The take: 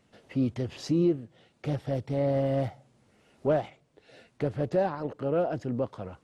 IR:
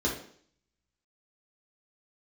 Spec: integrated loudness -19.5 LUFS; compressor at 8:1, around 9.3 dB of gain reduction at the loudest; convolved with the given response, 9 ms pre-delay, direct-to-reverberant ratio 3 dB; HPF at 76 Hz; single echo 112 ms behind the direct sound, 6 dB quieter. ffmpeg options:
-filter_complex "[0:a]highpass=76,acompressor=threshold=0.0316:ratio=8,aecho=1:1:112:0.501,asplit=2[s0][s1];[1:a]atrim=start_sample=2205,adelay=9[s2];[s1][s2]afir=irnorm=-1:irlink=0,volume=0.251[s3];[s0][s3]amix=inputs=2:normalize=0,volume=3.76"

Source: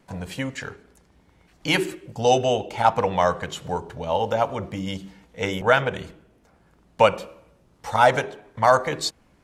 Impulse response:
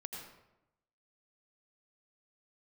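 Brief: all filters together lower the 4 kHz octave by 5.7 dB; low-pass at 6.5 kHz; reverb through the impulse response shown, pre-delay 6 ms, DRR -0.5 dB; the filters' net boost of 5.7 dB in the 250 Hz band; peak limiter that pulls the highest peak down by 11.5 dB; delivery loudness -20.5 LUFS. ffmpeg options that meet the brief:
-filter_complex "[0:a]lowpass=6500,equalizer=f=250:t=o:g=7.5,equalizer=f=4000:t=o:g=-8,alimiter=limit=0.211:level=0:latency=1,asplit=2[s0][s1];[1:a]atrim=start_sample=2205,adelay=6[s2];[s1][s2]afir=irnorm=-1:irlink=0,volume=1.33[s3];[s0][s3]amix=inputs=2:normalize=0,volume=1.41"

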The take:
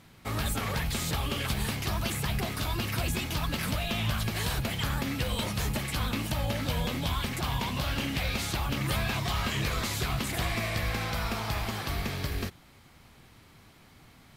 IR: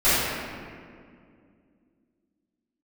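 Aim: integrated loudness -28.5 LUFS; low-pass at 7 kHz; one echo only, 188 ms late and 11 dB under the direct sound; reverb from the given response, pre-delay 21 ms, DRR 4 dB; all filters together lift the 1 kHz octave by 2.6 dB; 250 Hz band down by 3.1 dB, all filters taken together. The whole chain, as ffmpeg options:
-filter_complex "[0:a]lowpass=7000,equalizer=f=250:t=o:g=-4.5,equalizer=f=1000:t=o:g=3.5,aecho=1:1:188:0.282,asplit=2[s0][s1];[1:a]atrim=start_sample=2205,adelay=21[s2];[s1][s2]afir=irnorm=-1:irlink=0,volume=0.0596[s3];[s0][s3]amix=inputs=2:normalize=0,volume=1.12"

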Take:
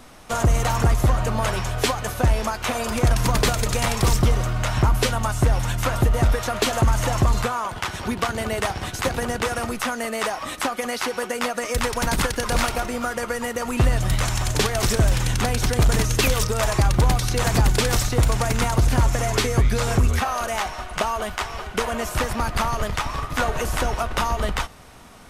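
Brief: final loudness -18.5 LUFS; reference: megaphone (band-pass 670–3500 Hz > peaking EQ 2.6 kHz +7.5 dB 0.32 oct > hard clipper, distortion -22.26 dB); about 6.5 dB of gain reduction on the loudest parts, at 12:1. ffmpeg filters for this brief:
-af "acompressor=threshold=0.1:ratio=12,highpass=670,lowpass=3500,equalizer=f=2600:t=o:w=0.32:g=7.5,asoftclip=type=hard:threshold=0.133,volume=3.76"

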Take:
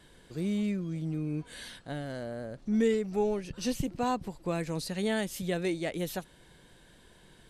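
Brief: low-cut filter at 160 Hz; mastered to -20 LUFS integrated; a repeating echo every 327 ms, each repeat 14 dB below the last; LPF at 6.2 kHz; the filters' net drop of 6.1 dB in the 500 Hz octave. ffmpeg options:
-af "highpass=160,lowpass=6200,equalizer=f=500:t=o:g=-7.5,aecho=1:1:327|654:0.2|0.0399,volume=6.31"

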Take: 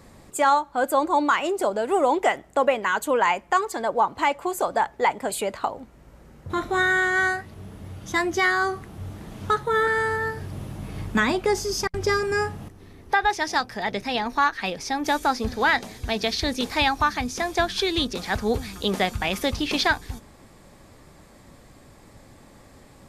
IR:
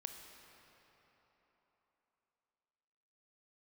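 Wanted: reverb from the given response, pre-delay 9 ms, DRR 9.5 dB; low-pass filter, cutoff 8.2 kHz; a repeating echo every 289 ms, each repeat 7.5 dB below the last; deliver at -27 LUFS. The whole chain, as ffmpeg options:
-filter_complex "[0:a]lowpass=8200,aecho=1:1:289|578|867|1156|1445:0.422|0.177|0.0744|0.0312|0.0131,asplit=2[s0][s1];[1:a]atrim=start_sample=2205,adelay=9[s2];[s1][s2]afir=irnorm=-1:irlink=0,volume=0.473[s3];[s0][s3]amix=inputs=2:normalize=0,volume=0.631"

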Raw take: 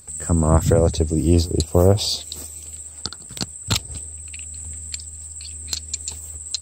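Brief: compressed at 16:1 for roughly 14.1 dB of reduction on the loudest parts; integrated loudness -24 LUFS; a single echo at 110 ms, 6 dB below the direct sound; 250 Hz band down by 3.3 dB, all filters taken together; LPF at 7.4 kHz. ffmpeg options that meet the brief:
-af "lowpass=7400,equalizer=f=250:t=o:g=-5,acompressor=threshold=0.0562:ratio=16,aecho=1:1:110:0.501,volume=2.37"

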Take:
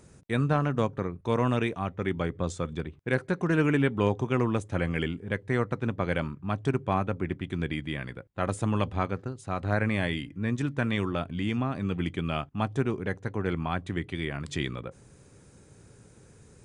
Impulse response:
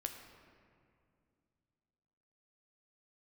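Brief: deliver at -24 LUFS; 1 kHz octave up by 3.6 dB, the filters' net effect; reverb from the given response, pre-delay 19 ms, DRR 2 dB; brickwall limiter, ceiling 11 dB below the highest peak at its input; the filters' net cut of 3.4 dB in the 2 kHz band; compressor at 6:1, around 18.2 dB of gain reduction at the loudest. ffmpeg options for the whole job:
-filter_complex "[0:a]equalizer=f=1000:t=o:g=6.5,equalizer=f=2000:t=o:g=-7,acompressor=threshold=0.01:ratio=6,alimiter=level_in=3.55:limit=0.0631:level=0:latency=1,volume=0.282,asplit=2[s0][s1];[1:a]atrim=start_sample=2205,adelay=19[s2];[s1][s2]afir=irnorm=-1:irlink=0,volume=0.944[s3];[s0][s3]amix=inputs=2:normalize=0,volume=11.2"

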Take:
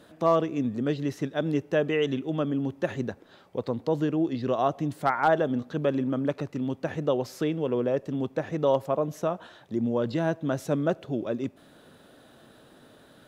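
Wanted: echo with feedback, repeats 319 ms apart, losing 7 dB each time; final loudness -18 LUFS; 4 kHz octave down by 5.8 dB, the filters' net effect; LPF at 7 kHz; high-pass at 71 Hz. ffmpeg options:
-af "highpass=71,lowpass=7000,equalizer=f=4000:t=o:g=-8,aecho=1:1:319|638|957|1276|1595:0.447|0.201|0.0905|0.0407|0.0183,volume=2.99"

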